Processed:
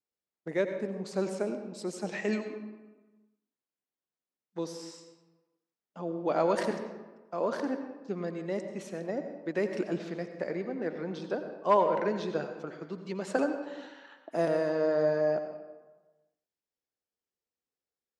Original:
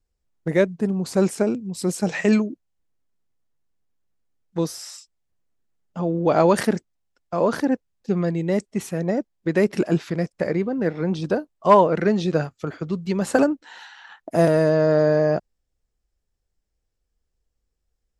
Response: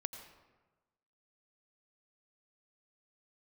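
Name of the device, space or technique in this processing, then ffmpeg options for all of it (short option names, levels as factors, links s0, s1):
supermarket ceiling speaker: -filter_complex "[0:a]highpass=250,lowpass=7000[s0];[1:a]atrim=start_sample=2205[s1];[s0][s1]afir=irnorm=-1:irlink=0,volume=0.398"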